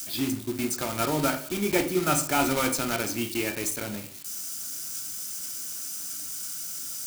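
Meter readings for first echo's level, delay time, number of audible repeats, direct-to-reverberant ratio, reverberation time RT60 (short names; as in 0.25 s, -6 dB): none, none, none, 5.0 dB, 0.50 s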